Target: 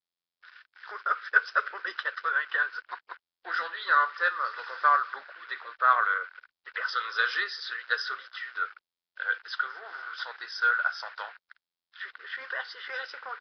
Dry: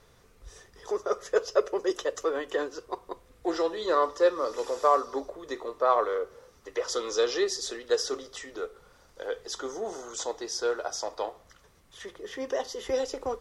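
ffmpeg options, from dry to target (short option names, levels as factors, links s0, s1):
-af "aeval=exprs='val(0)*gte(abs(val(0)),0.00501)':c=same,highpass=f=1500:t=q:w=8.2" -ar 11025 -c:a nellymoser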